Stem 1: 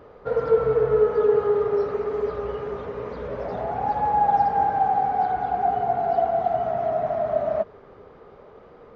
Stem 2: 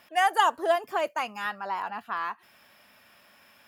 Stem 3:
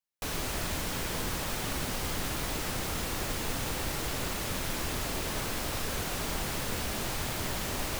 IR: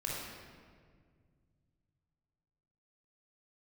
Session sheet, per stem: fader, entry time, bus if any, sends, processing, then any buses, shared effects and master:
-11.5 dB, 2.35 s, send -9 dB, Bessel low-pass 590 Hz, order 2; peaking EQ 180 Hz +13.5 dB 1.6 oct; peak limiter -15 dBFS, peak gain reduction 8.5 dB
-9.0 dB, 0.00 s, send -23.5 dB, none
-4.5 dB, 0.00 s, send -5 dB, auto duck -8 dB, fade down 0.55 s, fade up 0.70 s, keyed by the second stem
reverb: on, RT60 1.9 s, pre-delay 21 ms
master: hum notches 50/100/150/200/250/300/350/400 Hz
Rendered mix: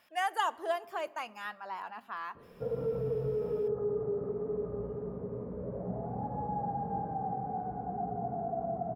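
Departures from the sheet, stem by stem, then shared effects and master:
stem 1: send -9 dB -> -17 dB; stem 3: muted

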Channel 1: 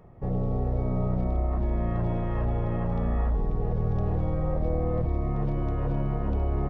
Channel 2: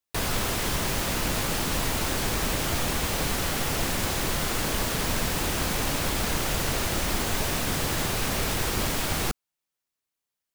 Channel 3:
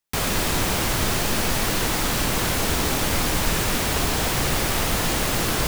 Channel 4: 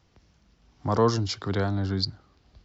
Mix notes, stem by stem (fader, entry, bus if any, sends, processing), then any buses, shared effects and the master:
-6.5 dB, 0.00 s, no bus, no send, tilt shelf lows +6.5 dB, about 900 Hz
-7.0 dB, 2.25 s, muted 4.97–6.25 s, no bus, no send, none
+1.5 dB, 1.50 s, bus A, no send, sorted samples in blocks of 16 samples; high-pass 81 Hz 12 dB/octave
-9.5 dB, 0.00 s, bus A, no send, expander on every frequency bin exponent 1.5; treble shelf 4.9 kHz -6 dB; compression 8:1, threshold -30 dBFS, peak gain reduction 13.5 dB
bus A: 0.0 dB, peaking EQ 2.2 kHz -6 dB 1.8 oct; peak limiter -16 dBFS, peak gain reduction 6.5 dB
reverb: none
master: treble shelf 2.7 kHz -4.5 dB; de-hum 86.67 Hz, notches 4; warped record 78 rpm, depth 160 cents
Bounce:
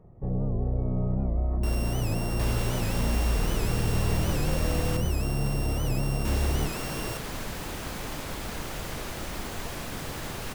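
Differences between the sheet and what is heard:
stem 3 +1.5 dB -> -9.0 dB; stem 4: muted

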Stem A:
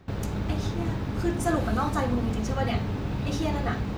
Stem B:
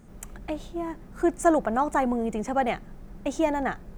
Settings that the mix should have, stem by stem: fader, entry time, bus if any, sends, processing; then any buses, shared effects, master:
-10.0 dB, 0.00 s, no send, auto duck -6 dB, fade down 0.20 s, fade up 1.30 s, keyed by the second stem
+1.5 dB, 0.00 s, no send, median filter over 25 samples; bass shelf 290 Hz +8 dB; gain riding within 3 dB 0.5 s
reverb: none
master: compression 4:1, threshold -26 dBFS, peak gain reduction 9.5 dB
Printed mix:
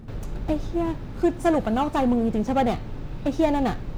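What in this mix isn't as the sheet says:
stem A -10.0 dB -> -2.0 dB; master: missing compression 4:1, threshold -26 dBFS, peak gain reduction 9.5 dB

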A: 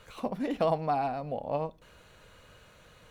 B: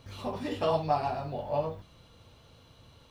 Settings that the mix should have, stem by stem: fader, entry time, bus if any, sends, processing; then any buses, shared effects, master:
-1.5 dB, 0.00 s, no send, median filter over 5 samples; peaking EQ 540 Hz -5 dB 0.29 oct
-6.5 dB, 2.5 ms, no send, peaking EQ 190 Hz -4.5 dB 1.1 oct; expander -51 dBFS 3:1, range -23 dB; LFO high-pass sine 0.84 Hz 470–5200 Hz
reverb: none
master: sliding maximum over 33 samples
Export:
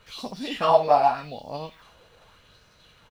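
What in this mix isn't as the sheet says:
stem B -6.5 dB -> +5.5 dB; master: missing sliding maximum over 33 samples

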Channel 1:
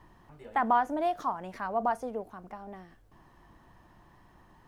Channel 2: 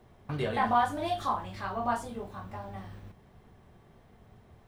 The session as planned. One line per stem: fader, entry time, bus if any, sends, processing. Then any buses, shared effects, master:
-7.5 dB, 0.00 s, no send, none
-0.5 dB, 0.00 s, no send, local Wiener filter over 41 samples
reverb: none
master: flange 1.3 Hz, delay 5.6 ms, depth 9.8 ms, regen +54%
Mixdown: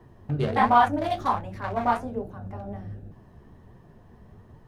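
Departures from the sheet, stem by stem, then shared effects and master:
stem 1 -7.5 dB -> +2.0 dB; stem 2 -0.5 dB -> +11.0 dB

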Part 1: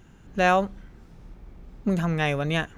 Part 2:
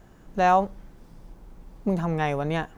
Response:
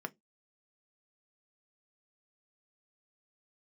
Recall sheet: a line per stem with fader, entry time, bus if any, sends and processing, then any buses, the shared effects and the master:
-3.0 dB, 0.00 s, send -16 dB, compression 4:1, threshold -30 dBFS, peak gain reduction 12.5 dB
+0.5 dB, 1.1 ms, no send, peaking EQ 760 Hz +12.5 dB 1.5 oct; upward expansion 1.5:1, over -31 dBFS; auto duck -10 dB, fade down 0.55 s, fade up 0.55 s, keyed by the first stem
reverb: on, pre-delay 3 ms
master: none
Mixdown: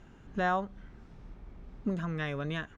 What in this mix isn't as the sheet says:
stem 2: missing peaking EQ 760 Hz +12.5 dB 1.5 oct; master: extra distance through air 75 m

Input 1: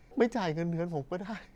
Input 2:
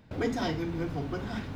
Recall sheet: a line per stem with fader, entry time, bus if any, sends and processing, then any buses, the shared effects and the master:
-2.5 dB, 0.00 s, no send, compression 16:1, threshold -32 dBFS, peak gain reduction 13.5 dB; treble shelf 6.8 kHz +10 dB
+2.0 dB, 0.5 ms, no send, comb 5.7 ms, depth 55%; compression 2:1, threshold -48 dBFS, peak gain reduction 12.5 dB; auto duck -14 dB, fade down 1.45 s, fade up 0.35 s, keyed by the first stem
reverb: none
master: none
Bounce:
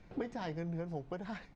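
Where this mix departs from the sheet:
stem 2 +2.0 dB -> -5.0 dB; master: extra distance through air 110 m

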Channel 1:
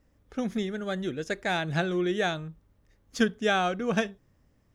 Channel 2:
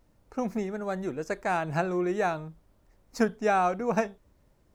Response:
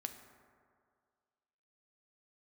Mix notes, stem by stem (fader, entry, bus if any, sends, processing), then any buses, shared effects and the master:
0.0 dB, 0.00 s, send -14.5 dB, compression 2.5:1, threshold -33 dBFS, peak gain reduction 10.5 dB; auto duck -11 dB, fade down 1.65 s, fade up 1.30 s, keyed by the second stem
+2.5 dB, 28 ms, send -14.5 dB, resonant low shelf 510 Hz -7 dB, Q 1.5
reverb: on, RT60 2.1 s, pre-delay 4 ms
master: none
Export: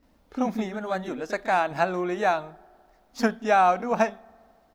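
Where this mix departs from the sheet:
stem 1: send off; master: extra graphic EQ 125/250/4000/8000 Hz -8/+9/+4/-5 dB

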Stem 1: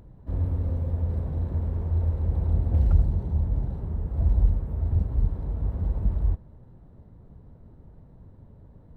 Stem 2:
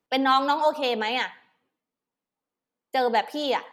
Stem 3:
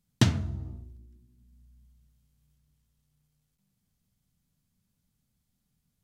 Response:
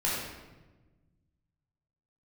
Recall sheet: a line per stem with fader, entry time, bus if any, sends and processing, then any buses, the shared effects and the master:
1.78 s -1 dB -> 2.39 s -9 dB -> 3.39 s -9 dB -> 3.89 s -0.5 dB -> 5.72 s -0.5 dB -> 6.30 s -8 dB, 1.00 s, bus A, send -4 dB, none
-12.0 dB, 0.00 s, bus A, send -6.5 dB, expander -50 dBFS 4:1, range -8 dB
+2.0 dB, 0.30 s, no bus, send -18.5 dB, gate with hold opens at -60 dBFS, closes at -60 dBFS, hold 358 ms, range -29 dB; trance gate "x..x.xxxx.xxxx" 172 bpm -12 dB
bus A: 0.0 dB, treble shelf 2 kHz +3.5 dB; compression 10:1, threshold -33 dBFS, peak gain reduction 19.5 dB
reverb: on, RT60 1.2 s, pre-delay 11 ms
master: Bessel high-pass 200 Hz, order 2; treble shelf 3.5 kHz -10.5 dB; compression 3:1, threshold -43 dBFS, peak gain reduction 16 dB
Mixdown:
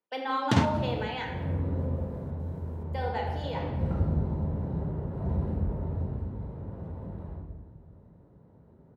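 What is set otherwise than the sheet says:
stem 2: missing expander -50 dBFS 4:1, range -8 dB; stem 3 +2.0 dB -> +11.0 dB; master: missing compression 3:1, threshold -43 dBFS, peak gain reduction 16 dB

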